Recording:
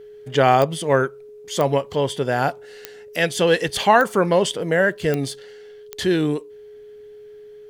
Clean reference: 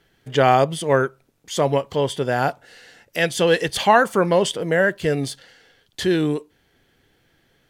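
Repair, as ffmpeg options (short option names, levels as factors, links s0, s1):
-af "adeclick=t=4,bandreject=f=420:w=30"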